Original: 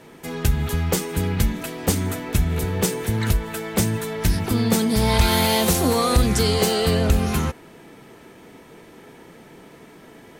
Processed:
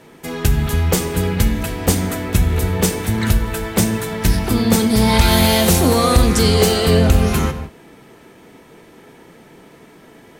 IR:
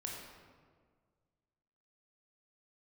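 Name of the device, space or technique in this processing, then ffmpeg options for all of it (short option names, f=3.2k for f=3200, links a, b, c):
keyed gated reverb: -filter_complex "[0:a]asplit=3[a][b][c];[1:a]atrim=start_sample=2205[d];[b][d]afir=irnorm=-1:irlink=0[e];[c]apad=whole_len=458509[f];[e][f]sidechaingate=range=-33dB:threshold=-40dB:ratio=16:detection=peak,volume=-2.5dB[g];[a][g]amix=inputs=2:normalize=0,volume=1dB"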